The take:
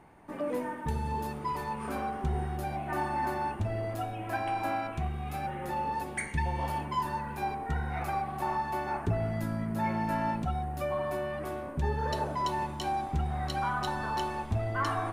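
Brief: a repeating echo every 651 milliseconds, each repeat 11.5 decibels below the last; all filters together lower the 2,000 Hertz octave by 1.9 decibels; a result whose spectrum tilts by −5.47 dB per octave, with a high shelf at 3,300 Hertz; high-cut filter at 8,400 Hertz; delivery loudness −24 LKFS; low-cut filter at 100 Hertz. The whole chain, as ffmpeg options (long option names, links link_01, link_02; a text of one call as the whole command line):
ffmpeg -i in.wav -af "highpass=100,lowpass=8400,equalizer=frequency=2000:width_type=o:gain=-4.5,highshelf=frequency=3300:gain=7,aecho=1:1:651|1302|1953:0.266|0.0718|0.0194,volume=9.5dB" out.wav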